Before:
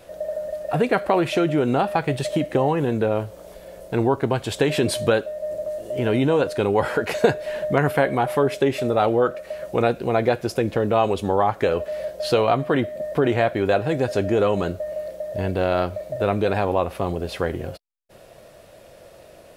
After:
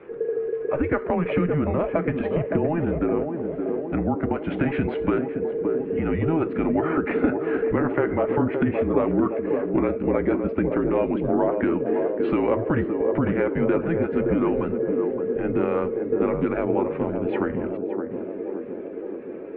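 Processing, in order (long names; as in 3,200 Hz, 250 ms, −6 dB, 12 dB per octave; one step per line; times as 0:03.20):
spectral magnitudes quantised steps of 15 dB
downward compressor 2.5 to 1, threshold −25 dBFS, peak gain reduction 9.5 dB
single-sideband voice off tune −160 Hz 250–2,500 Hz
feedback echo with a band-pass in the loop 568 ms, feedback 78%, band-pass 400 Hz, level −4 dB
level +3.5 dB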